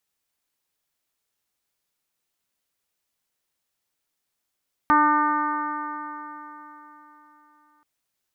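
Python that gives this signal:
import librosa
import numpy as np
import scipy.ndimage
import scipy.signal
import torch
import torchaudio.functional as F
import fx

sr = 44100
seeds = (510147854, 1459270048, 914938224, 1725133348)

y = fx.additive_stiff(sr, length_s=2.93, hz=297.0, level_db=-22, upper_db=(-15.0, 4.0, 5.5, -3.0, -7, -19.5), decay_s=3.8, stiffness=0.0013)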